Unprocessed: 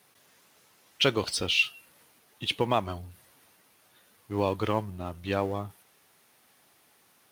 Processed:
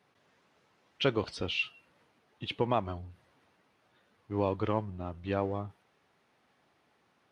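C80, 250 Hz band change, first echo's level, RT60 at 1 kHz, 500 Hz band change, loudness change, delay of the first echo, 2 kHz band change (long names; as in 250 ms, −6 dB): no reverb audible, −2.0 dB, no echo audible, no reverb audible, −2.5 dB, −4.5 dB, no echo audible, −7.5 dB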